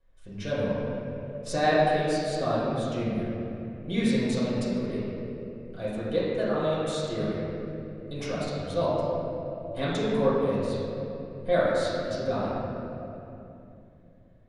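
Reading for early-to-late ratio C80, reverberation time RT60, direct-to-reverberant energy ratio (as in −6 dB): −1.5 dB, 2.9 s, −11.0 dB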